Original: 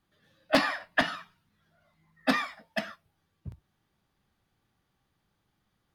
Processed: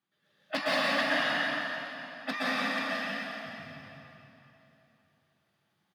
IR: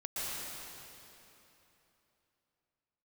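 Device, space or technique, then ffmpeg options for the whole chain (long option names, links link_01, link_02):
PA in a hall: -filter_complex "[0:a]highpass=frequency=130:width=0.5412,highpass=frequency=130:width=1.3066,equalizer=frequency=2700:width_type=o:width=2.2:gain=5,aecho=1:1:174:0.501[link_01];[1:a]atrim=start_sample=2205[link_02];[link_01][link_02]afir=irnorm=-1:irlink=0,volume=-6.5dB"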